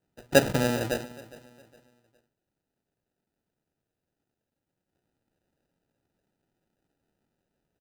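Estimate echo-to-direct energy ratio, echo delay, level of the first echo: −19.0 dB, 411 ms, −19.5 dB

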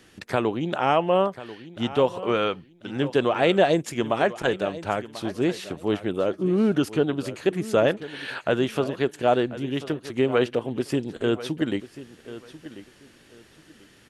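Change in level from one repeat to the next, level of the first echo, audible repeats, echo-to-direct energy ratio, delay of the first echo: −13.0 dB, −15.5 dB, 2, −15.5 dB, 1,040 ms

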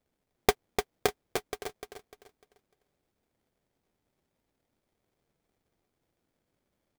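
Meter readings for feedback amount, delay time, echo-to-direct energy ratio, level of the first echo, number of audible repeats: 31%, 299 ms, −6.0 dB, −6.5 dB, 3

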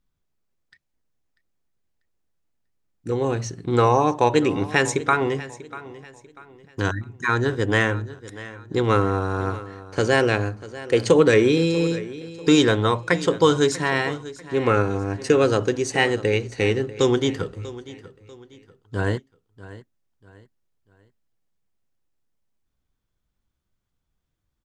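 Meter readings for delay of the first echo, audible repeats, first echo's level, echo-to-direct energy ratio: 642 ms, 2, −17.0 dB, −16.5 dB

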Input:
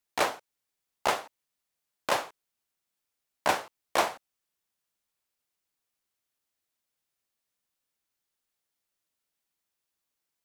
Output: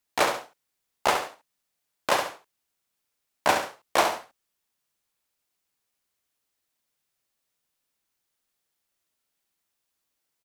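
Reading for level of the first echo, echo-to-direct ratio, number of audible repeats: −7.5 dB, −7.0 dB, 2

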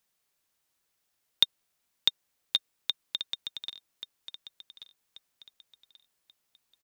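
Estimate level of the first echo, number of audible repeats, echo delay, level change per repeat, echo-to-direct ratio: −12.5 dB, 3, 1,134 ms, −9.5 dB, −12.0 dB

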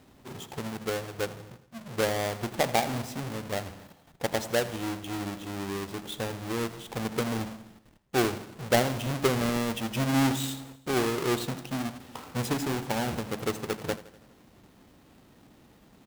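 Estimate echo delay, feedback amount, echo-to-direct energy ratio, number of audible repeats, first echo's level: 82 ms, 56%, −15.5 dB, 4, −17.0 dB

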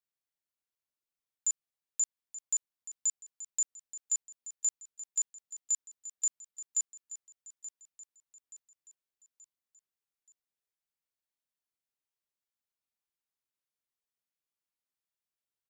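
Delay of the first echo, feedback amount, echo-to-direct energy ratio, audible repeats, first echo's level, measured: 878 ms, 46%, −13.5 dB, 4, −14.5 dB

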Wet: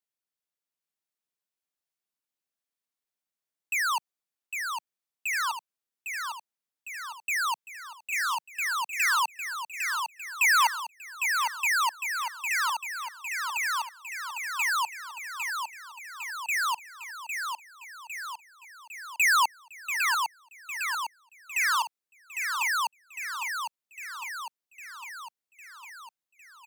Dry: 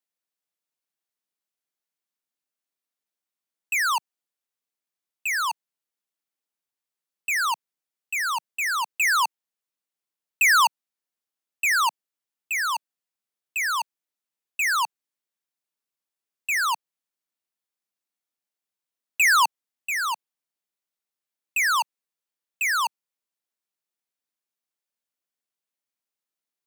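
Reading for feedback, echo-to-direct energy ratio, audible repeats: 60%, −3.5 dB, 7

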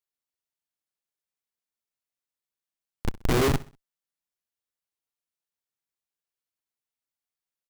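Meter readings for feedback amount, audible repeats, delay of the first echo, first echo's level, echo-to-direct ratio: 36%, 2, 64 ms, −19.0 dB, −18.5 dB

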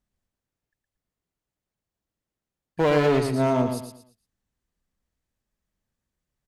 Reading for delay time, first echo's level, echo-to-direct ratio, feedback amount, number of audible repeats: 115 ms, −6.5 dB, −6.0 dB, 31%, 3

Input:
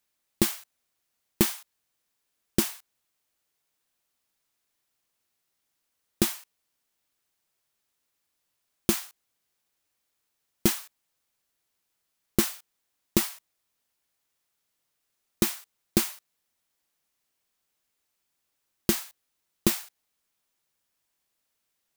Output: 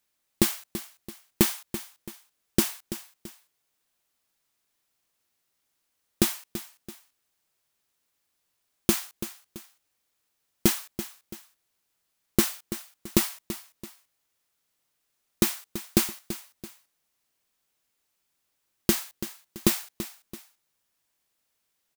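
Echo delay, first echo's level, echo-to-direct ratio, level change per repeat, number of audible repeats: 334 ms, −12.5 dB, −12.0 dB, −8.0 dB, 2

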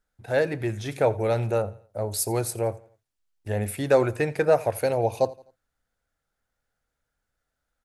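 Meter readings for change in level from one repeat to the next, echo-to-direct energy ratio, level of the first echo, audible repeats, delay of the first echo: −8.0 dB, −20.5 dB, −21.0 dB, 2, 85 ms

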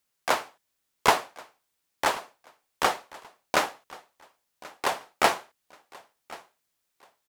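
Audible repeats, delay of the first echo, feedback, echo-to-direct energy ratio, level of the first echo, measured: 2, 1,082 ms, 32%, −20.5 dB, −21.0 dB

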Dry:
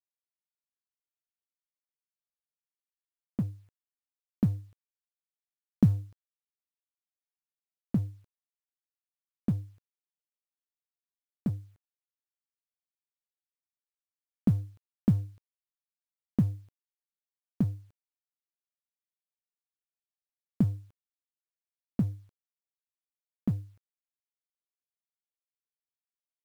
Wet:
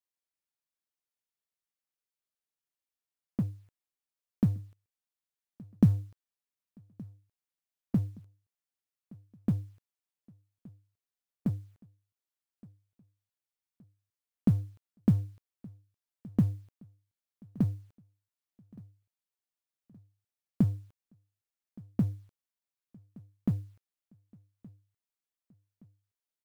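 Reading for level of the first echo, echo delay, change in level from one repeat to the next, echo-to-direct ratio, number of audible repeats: −23.0 dB, 1,170 ms, −7.0 dB, −22.0 dB, 2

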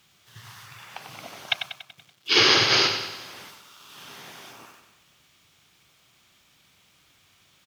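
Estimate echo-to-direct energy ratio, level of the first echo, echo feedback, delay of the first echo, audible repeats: −6.5 dB, −8.0 dB, 53%, 95 ms, 5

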